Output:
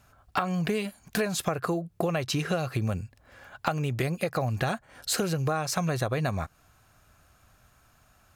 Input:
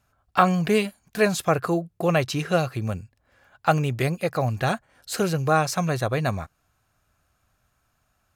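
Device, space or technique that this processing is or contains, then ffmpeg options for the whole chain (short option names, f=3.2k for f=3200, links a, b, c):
serial compression, leveller first: -af "acompressor=threshold=-24dB:ratio=2.5,acompressor=threshold=-35dB:ratio=4,volume=8.5dB"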